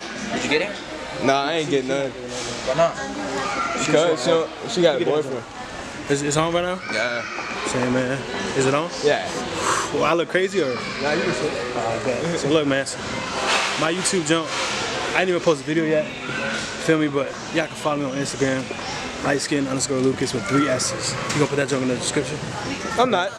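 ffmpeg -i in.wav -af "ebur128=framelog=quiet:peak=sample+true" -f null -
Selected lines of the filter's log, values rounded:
Integrated loudness:
  I:         -22.0 LUFS
  Threshold: -32.1 LUFS
Loudness range:
  LRA:         2.1 LU
  Threshold: -42.0 LUFS
  LRA low:   -23.2 LUFS
  LRA high:  -21.1 LUFS
Sample peak:
  Peak:       -4.8 dBFS
True peak:
  Peak:       -4.7 dBFS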